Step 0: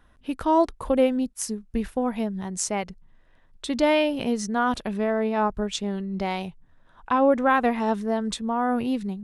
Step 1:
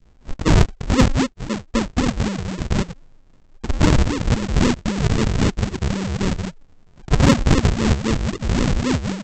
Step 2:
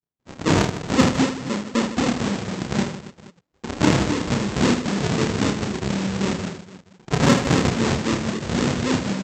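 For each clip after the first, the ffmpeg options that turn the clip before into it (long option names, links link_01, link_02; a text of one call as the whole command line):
ffmpeg -i in.wav -af "aresample=16000,acrusher=samples=40:mix=1:aa=0.000001:lfo=1:lforange=40:lforate=3.8,aresample=44100,adynamicequalizer=threshold=0.00891:dfrequency=850:dqfactor=0.88:tfrequency=850:tqfactor=0.88:attack=5:release=100:ratio=0.375:range=2:mode=cutabove:tftype=bell,acontrast=78" out.wav
ffmpeg -i in.wav -filter_complex "[0:a]agate=range=-36dB:threshold=-45dB:ratio=16:detection=peak,highpass=150,asplit=2[link_01][link_02];[link_02]aecho=0:1:30|78|154.8|277.7|474.3:0.631|0.398|0.251|0.158|0.1[link_03];[link_01][link_03]amix=inputs=2:normalize=0,volume=-1.5dB" out.wav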